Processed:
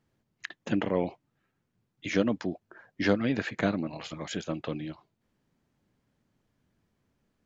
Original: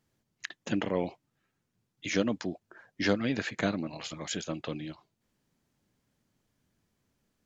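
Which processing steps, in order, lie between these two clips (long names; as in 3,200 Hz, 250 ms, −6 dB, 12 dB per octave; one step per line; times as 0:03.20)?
high-shelf EQ 4,300 Hz −11.5 dB
level +2.5 dB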